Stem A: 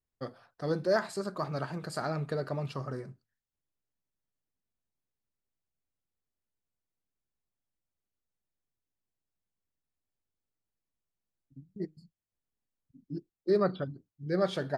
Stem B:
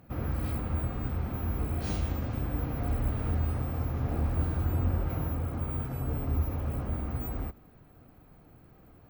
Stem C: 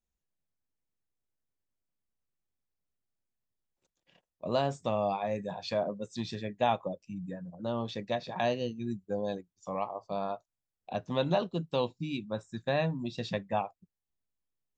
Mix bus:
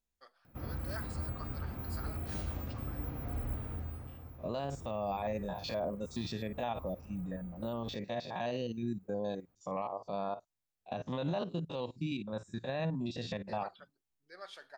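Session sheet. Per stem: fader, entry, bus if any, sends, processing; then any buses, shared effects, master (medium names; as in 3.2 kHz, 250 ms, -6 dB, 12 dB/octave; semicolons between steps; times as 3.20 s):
-10.0 dB, 0.00 s, no send, high-pass 1.1 kHz
-8.0 dB, 0.45 s, no send, treble shelf 10 kHz +5 dB; auto duck -12 dB, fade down 0.85 s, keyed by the third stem
+0.5 dB, 0.00 s, no send, spectrogram pixelated in time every 50 ms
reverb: none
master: peak limiter -26.5 dBFS, peak gain reduction 11 dB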